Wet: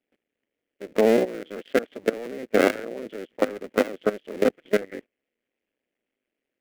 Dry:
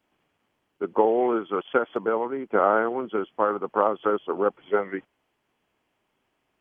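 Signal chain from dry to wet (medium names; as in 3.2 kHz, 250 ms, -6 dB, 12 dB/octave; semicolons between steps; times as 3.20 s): cycle switcher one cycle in 2, muted; ten-band graphic EQ 125 Hz -6 dB, 250 Hz +9 dB, 500 Hz +11 dB, 1 kHz -12 dB, 2 kHz +10 dB; level held to a coarse grid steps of 17 dB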